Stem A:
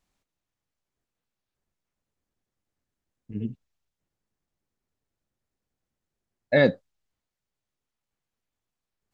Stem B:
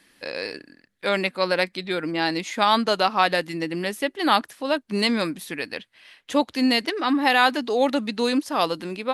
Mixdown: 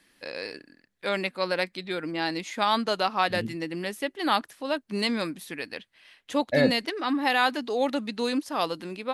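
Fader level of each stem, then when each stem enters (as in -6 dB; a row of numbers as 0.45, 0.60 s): -3.5, -5.0 dB; 0.00, 0.00 s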